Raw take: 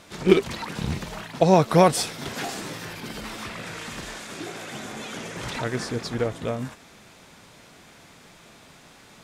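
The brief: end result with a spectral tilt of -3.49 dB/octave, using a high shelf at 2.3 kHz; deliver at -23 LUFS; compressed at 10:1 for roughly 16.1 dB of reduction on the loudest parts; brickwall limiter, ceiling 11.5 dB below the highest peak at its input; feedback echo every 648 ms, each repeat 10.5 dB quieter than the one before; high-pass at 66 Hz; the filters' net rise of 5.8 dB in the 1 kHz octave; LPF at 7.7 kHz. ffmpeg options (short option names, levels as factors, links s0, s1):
-af "highpass=66,lowpass=7700,equalizer=f=1000:t=o:g=7,highshelf=f=2300:g=3.5,acompressor=threshold=0.0562:ratio=10,alimiter=level_in=1.06:limit=0.0631:level=0:latency=1,volume=0.944,aecho=1:1:648|1296|1944:0.299|0.0896|0.0269,volume=3.55"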